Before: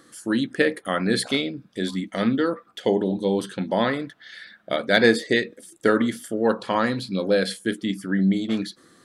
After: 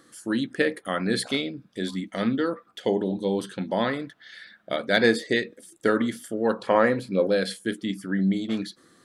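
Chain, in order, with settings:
0:06.67–0:07.27: octave-band graphic EQ 500/2,000/4,000 Hz +10/+7/−10 dB
level −3 dB

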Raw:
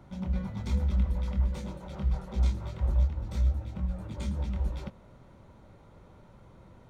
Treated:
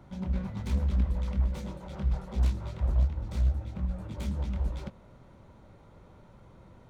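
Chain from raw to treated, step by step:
phase distortion by the signal itself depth 0.5 ms

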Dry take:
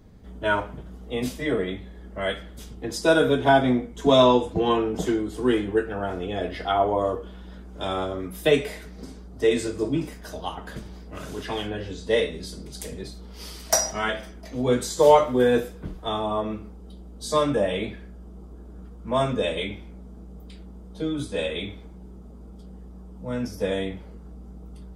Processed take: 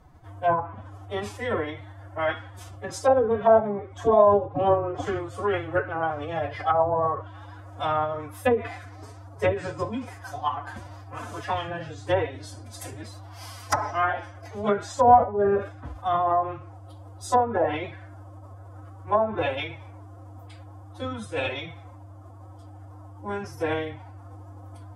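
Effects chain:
octave-band graphic EQ 125/250/1,000/4,000 Hz −4/−10/+10/−6 dB
phase-vocoder pitch shift with formants kept +8.5 semitones
treble cut that deepens with the level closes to 690 Hz, closed at −15.5 dBFS

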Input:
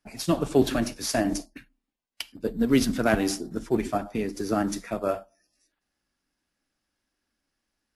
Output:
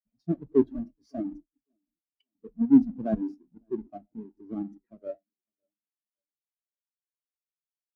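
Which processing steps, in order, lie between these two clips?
each half-wave held at its own peak
on a send: repeating echo 556 ms, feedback 48%, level −20 dB
on the sum: every bin expanded away from the loudest bin 2.5 to 1

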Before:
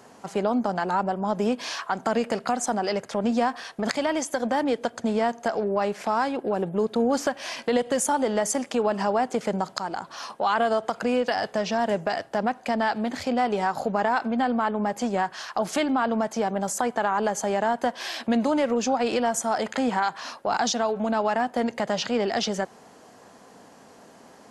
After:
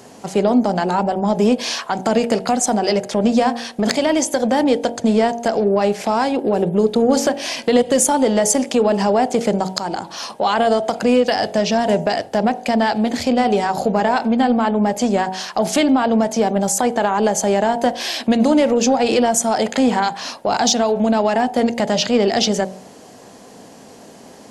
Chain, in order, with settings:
parametric band 1,300 Hz −8.5 dB 1.3 octaves
hum removal 46.94 Hz, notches 20
in parallel at −3 dB: soft clipping −17.5 dBFS, distortion −21 dB
on the sum: level +6.5 dB

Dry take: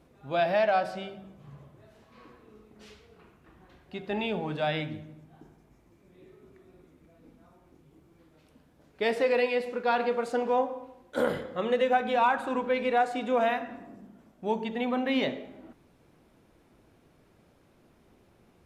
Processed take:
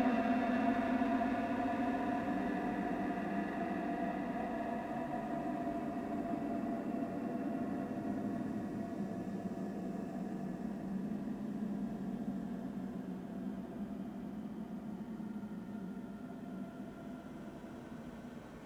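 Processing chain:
extreme stretch with random phases 38×, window 0.10 s, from 0:13.73
windowed peak hold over 3 samples
level +8.5 dB

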